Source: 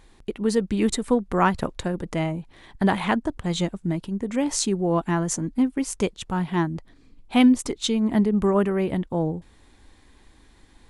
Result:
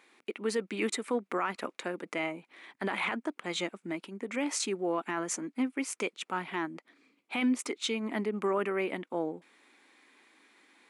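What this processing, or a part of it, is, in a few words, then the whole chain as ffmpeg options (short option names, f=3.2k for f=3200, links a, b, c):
laptop speaker: -af "highpass=f=260:w=0.5412,highpass=f=260:w=1.3066,equalizer=f=1.3k:t=o:w=0.44:g=6,equalizer=f=2.3k:t=o:w=0.58:g=11,alimiter=limit=-14.5dB:level=0:latency=1:release=15,volume=-6.5dB"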